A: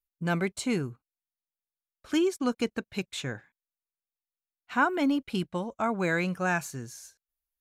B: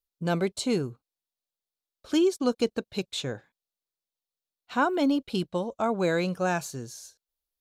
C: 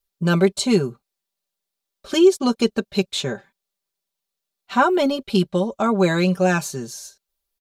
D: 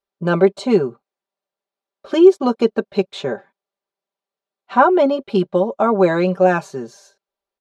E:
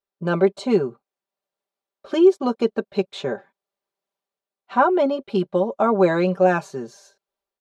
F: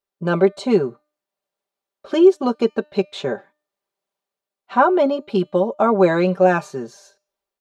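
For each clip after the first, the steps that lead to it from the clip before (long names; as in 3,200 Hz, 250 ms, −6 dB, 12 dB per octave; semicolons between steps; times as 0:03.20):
octave-band graphic EQ 500/2,000/4,000 Hz +6/−7/+7 dB
comb filter 5.1 ms, depth 82%; level +6 dB
resonant band-pass 630 Hz, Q 0.77; level +6.5 dB
automatic gain control gain up to 5.5 dB; level −4.5 dB
tuned comb filter 300 Hz, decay 0.48 s, harmonics all, mix 40%; level +6.5 dB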